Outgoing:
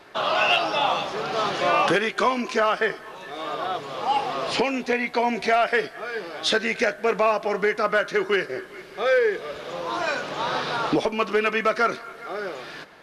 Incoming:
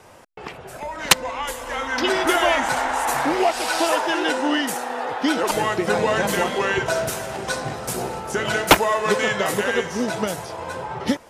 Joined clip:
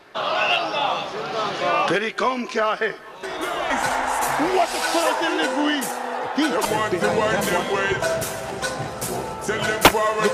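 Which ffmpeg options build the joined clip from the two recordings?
ffmpeg -i cue0.wav -i cue1.wav -filter_complex "[1:a]asplit=2[link_01][link_02];[0:a]apad=whole_dur=10.33,atrim=end=10.33,atrim=end=3.702[link_03];[link_02]atrim=start=2.558:end=9.19[link_04];[link_01]atrim=start=2.09:end=2.56,asetpts=PTS-STARTPTS,volume=-9.5dB,afade=type=in:duration=0.004:curve=hsin,afade=type=out:start_time=0.466:duration=0.004:curve=hsin,adelay=3230[link_05];[link_03][link_04]acrossfade=duration=0.004:curve1=hsin:curve2=hsin[link_06];[link_06][link_05]amix=inputs=2:normalize=0" out.wav

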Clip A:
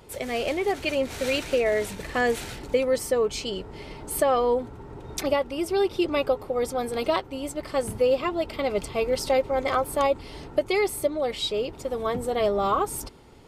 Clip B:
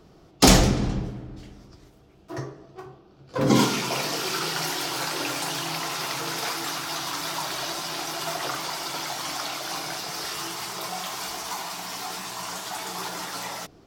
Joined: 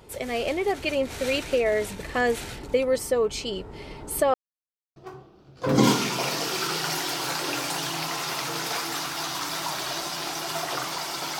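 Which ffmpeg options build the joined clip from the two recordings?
ffmpeg -i cue0.wav -i cue1.wav -filter_complex "[0:a]apad=whole_dur=11.39,atrim=end=11.39,asplit=2[link_01][link_02];[link_01]atrim=end=4.34,asetpts=PTS-STARTPTS,afade=type=out:start_time=4.336:duration=0.004:curve=hsin[link_03];[link_02]atrim=start=4.34:end=4.96,asetpts=PTS-STARTPTS,volume=0[link_04];[1:a]atrim=start=2.68:end=9.11,asetpts=PTS-STARTPTS,afade=type=in:duration=0.004:curve=hsin[link_05];[link_03][link_04][link_05]concat=n=3:v=0:a=1" out.wav

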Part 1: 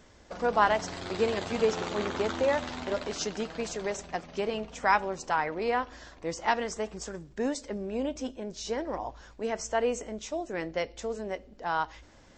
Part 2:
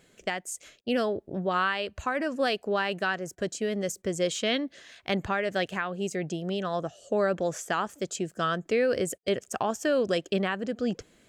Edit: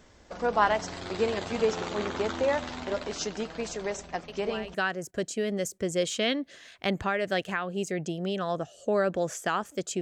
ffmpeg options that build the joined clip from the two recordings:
ffmpeg -i cue0.wav -i cue1.wav -filter_complex "[1:a]asplit=2[link_01][link_02];[0:a]apad=whole_dur=10.01,atrim=end=10.01,atrim=end=4.742[link_03];[link_02]atrim=start=2.978:end=8.25[link_04];[link_01]atrim=start=2.52:end=2.98,asetpts=PTS-STARTPTS,volume=-12dB,afade=type=in:duration=0.004:curve=hsin,afade=type=out:start_time=0.456:duration=0.004:curve=hsin,adelay=4280[link_05];[link_03][link_04]acrossfade=duration=0.004:curve1=hsin:curve2=hsin[link_06];[link_06][link_05]amix=inputs=2:normalize=0" out.wav

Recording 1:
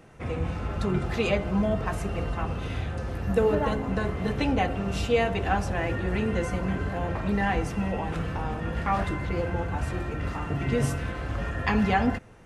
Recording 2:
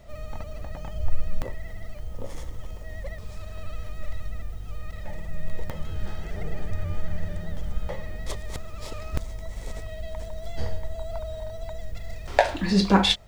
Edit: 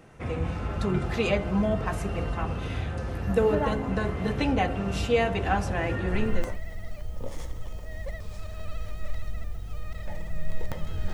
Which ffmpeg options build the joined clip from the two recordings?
ffmpeg -i cue0.wav -i cue1.wav -filter_complex "[0:a]apad=whole_dur=11.13,atrim=end=11.13,atrim=end=6.6,asetpts=PTS-STARTPTS[link_01];[1:a]atrim=start=1.06:end=6.11,asetpts=PTS-STARTPTS[link_02];[link_01][link_02]acrossfade=duration=0.52:curve1=qsin:curve2=qsin" out.wav

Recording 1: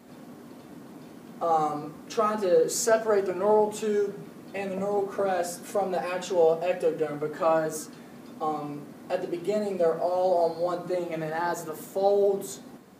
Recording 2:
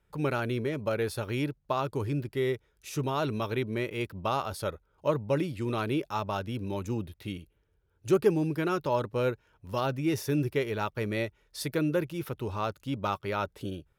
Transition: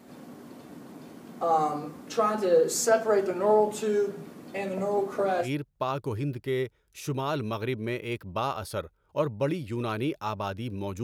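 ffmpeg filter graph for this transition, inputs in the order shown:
ffmpeg -i cue0.wav -i cue1.wav -filter_complex "[0:a]apad=whole_dur=11.03,atrim=end=11.03,atrim=end=5.5,asetpts=PTS-STARTPTS[link_01];[1:a]atrim=start=1.29:end=6.92,asetpts=PTS-STARTPTS[link_02];[link_01][link_02]acrossfade=duration=0.1:curve1=tri:curve2=tri" out.wav

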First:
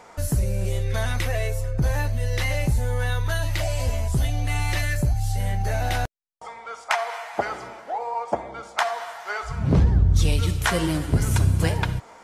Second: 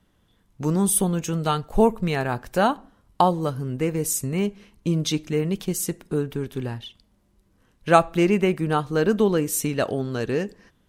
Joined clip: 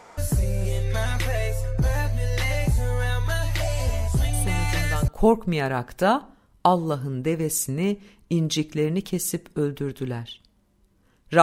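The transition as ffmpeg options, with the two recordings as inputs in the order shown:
ffmpeg -i cue0.wav -i cue1.wav -filter_complex "[1:a]asplit=2[link_01][link_02];[0:a]apad=whole_dur=11.42,atrim=end=11.42,atrim=end=5.082[link_03];[link_02]atrim=start=1.628:end=7.97[link_04];[link_01]atrim=start=0.88:end=1.63,asetpts=PTS-STARTPTS,volume=-9.5dB,afade=type=in:duration=0.004:curve=hsin,afade=type=out:start_time=0.746:duration=0.004:curve=hsin,adelay=190953S[link_05];[link_03][link_04]acrossfade=duration=0.004:curve1=hsin:curve2=hsin[link_06];[link_06][link_05]amix=inputs=2:normalize=0" out.wav

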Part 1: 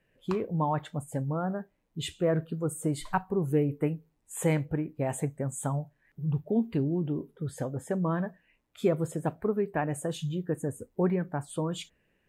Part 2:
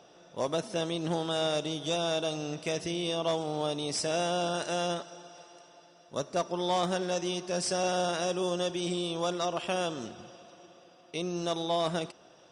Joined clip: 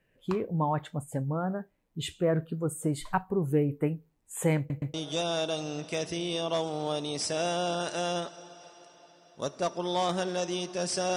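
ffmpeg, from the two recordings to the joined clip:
ffmpeg -i cue0.wav -i cue1.wav -filter_complex "[0:a]apad=whole_dur=11.16,atrim=end=11.16,asplit=3[link_01][link_02][link_03];[link_01]atrim=end=4.702[link_04];[link_02]atrim=start=4.578:end=4.702[link_05];[link_03]atrim=start=4.578:end=4.702[link_06];[1:a]atrim=start=1.678:end=7.9[link_07];[link_04][link_05]acrossfade=duration=0.004:curve1=hsin:curve2=hsin[link_08];[link_08][link_06]acrossfade=duration=0.004:curve1=hsin:curve2=hsin[link_09];[link_09][link_07]acrossfade=duration=0.004:curve1=hsin:curve2=hsin" out.wav

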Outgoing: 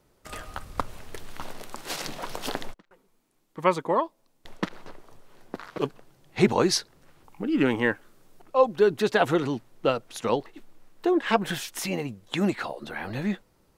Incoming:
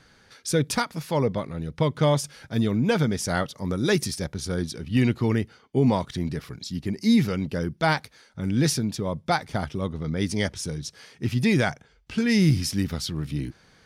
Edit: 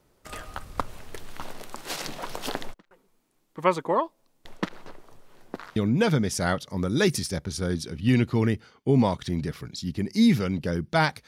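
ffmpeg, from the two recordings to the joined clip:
ffmpeg -i cue0.wav -i cue1.wav -filter_complex "[0:a]apad=whole_dur=11.27,atrim=end=11.27,atrim=end=5.762[link_01];[1:a]atrim=start=2.638:end=8.15[link_02];[link_01][link_02]acrossfade=duration=0.004:curve1=hsin:curve2=hsin" out.wav

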